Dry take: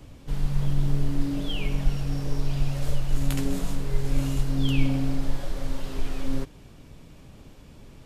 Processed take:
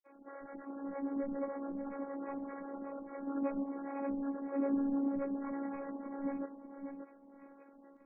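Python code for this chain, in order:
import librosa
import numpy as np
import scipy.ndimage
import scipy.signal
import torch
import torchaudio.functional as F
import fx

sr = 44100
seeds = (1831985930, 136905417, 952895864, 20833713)

p1 = fx.brickwall_bandpass(x, sr, low_hz=220.0, high_hz=1300.0)
p2 = fx.granulator(p1, sr, seeds[0], grain_ms=100.0, per_s=28.0, spray_ms=100.0, spread_st=12)
p3 = p2 + fx.echo_feedback(p2, sr, ms=586, feedback_pct=19, wet_db=-7.5, dry=0)
p4 = fx.robotise(p3, sr, hz=278.0)
y = F.gain(torch.from_numpy(p4), 1.0).numpy()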